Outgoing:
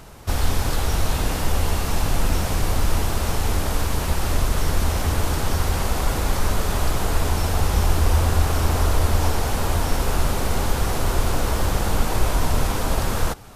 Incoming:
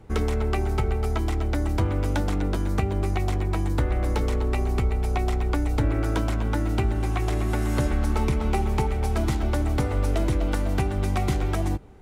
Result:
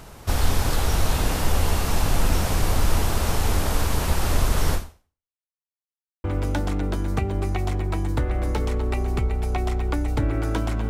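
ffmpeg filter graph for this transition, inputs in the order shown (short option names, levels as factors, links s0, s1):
-filter_complex "[0:a]apad=whole_dur=10.89,atrim=end=10.89,asplit=2[s0][s1];[s0]atrim=end=5.35,asetpts=PTS-STARTPTS,afade=t=out:st=4.74:d=0.61:c=exp[s2];[s1]atrim=start=5.35:end=6.24,asetpts=PTS-STARTPTS,volume=0[s3];[1:a]atrim=start=1.85:end=6.5,asetpts=PTS-STARTPTS,afade=t=in:d=0.004:c=hsin[s4];[s2][s3][s4]concat=n=3:v=0:a=1"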